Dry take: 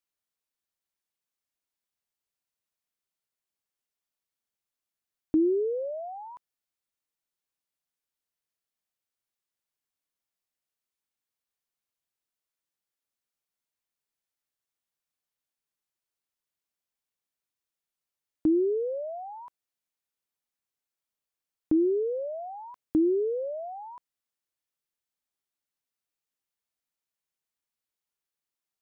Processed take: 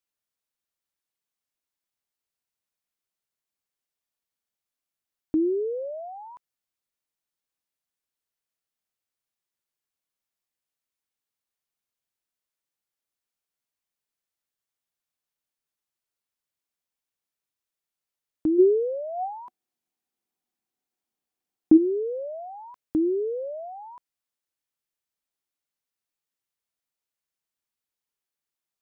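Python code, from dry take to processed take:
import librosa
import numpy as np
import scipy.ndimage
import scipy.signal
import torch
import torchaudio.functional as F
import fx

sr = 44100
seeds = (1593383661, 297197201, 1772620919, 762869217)

y = fx.small_body(x, sr, hz=(240.0, 340.0, 740.0), ring_ms=35, db=11, at=(18.58, 21.76), fade=0.02)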